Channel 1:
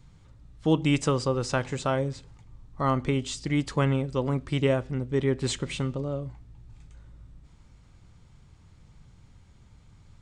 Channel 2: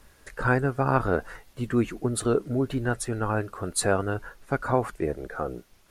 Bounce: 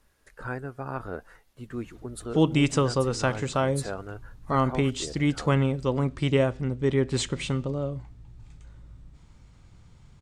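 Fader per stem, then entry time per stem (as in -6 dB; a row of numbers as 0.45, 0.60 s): +1.5, -11.0 dB; 1.70, 0.00 s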